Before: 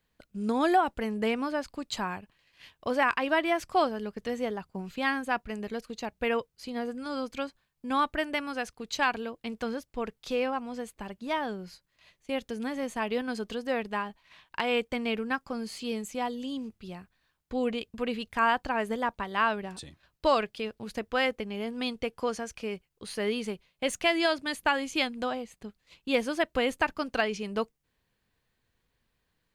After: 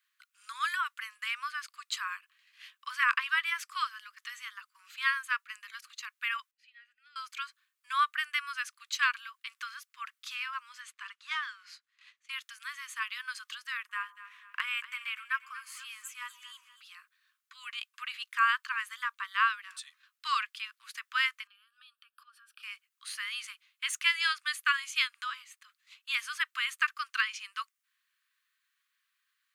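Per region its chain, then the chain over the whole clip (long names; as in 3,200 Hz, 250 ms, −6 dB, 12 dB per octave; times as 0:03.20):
0:06.51–0:07.16: formant filter e + notch filter 1,700 Hz, Q 9.1
0:10.80–0:12.31: leveller curve on the samples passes 1 + high-frequency loss of the air 61 metres
0:13.77–0:16.81: parametric band 4,300 Hz −10.5 dB 0.83 octaves + delay that swaps between a low-pass and a high-pass 120 ms, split 830 Hz, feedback 67%, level −10.5 dB
0:21.47–0:22.63: dynamic equaliser 3,900 Hz, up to −6 dB, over −48 dBFS, Q 0.8 + downward compressor 10 to 1, threshold −44 dBFS + phaser with its sweep stopped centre 1,400 Hz, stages 8
whole clip: Butterworth high-pass 1,100 Hz 96 dB per octave; parametric band 4,700 Hz −2.5 dB 0.77 octaves; level +2 dB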